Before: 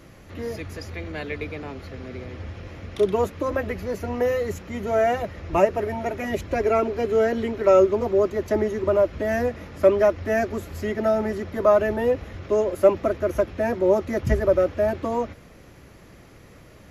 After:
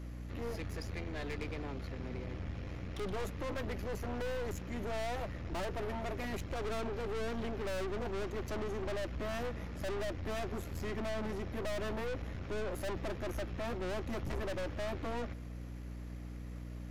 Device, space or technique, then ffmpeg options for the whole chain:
valve amplifier with mains hum: -af "aeval=exprs='(tanh(44.7*val(0)+0.65)-tanh(0.65))/44.7':c=same,aeval=exprs='val(0)+0.0112*(sin(2*PI*60*n/s)+sin(2*PI*2*60*n/s)/2+sin(2*PI*3*60*n/s)/3+sin(2*PI*4*60*n/s)/4+sin(2*PI*5*60*n/s)/5)':c=same,volume=-4dB"

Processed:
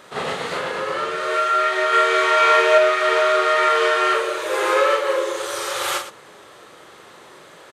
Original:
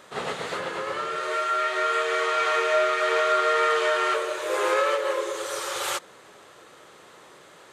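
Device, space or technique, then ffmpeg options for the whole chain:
slapback doubling: -filter_complex "[0:a]asplit=3[a][b][c];[b]adelay=40,volume=-5dB[d];[c]adelay=116,volume=-11.5dB[e];[a][d][e]amix=inputs=3:normalize=0,equalizer=f=7.2k:t=o:w=0.41:g=-3,asettb=1/sr,asplit=3[f][g][h];[f]atrim=end=1.904[i];[g]atrim=start=1.9:end=2.78,asetpts=PTS-STARTPTS,afade=t=in:d=0.004:c=qsin,afade=t=out:st=0.876:d=0.004:c=qsin,asplit=2[j][k];[k]adelay=26,volume=-2.5dB[l];[j][l]amix=inputs=2:normalize=0,atrim=end_sample=38808[m];[h]atrim=start=2.776[n];[i][m]acrossfade=d=0.004:c1=hsin:c2=qsin[o];[o][n]acrossfade=d=0.004:c1=qsin:c2=hsin,volume=4dB"

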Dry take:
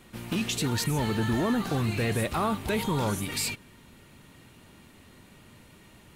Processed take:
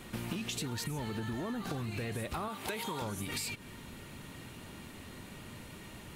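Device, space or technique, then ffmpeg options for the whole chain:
serial compression, leveller first: -filter_complex "[0:a]asettb=1/sr,asplit=3[a][b][c];[a]atrim=end=2.484[d];[b]atrim=start=2.48:end=3.02,asetpts=PTS-STARTPTS,afade=t=in:d=0.004:c=qsin,afade=t=out:st=0.536:d=0.004:c=qsin,highpass=f=580:p=1[e];[c]atrim=start=3.016[f];[d][e]acrossfade=d=0.004:c1=hsin:c2=qsin[g];[g][f]acrossfade=d=0.004:c1=qsin:c2=hsin,acompressor=threshold=-31dB:ratio=3,acompressor=threshold=-40dB:ratio=6,volume=5dB"

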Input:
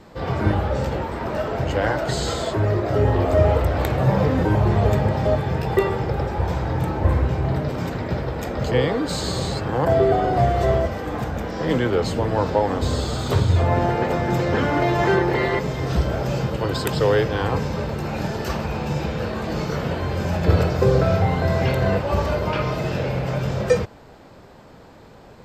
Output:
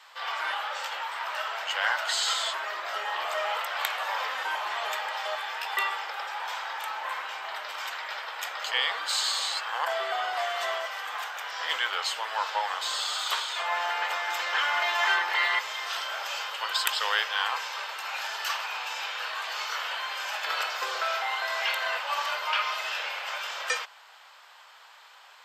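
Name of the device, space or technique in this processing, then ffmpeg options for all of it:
headphones lying on a table: -af "highpass=f=1k:w=0.5412,highpass=f=1k:w=1.3066,equalizer=f=3.1k:t=o:w=0.42:g=6.5,volume=1.5dB"

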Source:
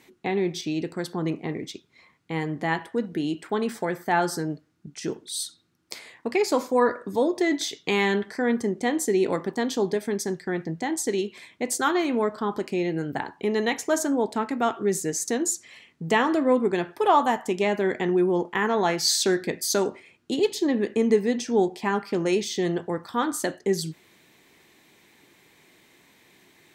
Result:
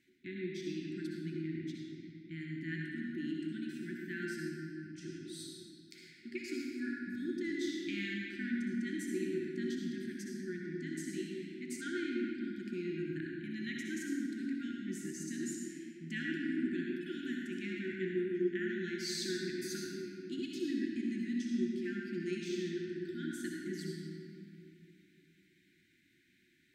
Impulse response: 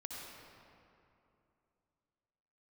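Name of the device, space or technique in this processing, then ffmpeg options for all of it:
swimming-pool hall: -filter_complex "[1:a]atrim=start_sample=2205[a];[0:a][a]afir=irnorm=-1:irlink=0,highshelf=f=4.9k:g=-8,asettb=1/sr,asplit=3[b][c][d];[b]atrim=end=11.814[e];[c]atrim=start=11.81:end=12.44,asetpts=PTS-STARTPTS,afade=t=in:d=0.004:c=qsin,afade=t=out:st=0.626:d=0.004:c=qsin,lowpass=6.8k[f];[d]atrim=start=12.436[g];[e][f]acrossfade=d=0.004:c1=hsin:c2=qsin[h];[h][g]acrossfade=d=0.004:c1=qsin:c2=hsin,afftfilt=real='re*(1-between(b*sr/4096,380,1400))':imag='im*(1-between(b*sr/4096,380,1400))':win_size=4096:overlap=0.75,volume=-9dB"

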